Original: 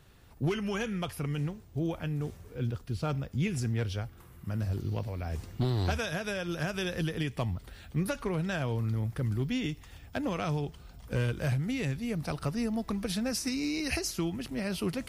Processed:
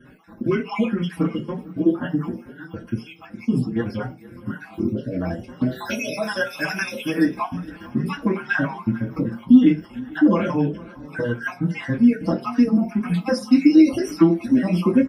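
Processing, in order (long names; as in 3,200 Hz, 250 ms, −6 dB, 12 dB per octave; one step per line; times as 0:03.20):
time-frequency cells dropped at random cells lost 53%
0:05.71–0:07.25: RIAA equalisation recording
downward compressor, threshold −30 dBFS, peak gain reduction 6 dB
feedback echo with a long and a short gap by turns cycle 754 ms, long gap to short 1.5 to 1, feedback 30%, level −21.5 dB
convolution reverb RT60 0.30 s, pre-delay 3 ms, DRR −9.5 dB
barber-pole flanger 5.1 ms +2 Hz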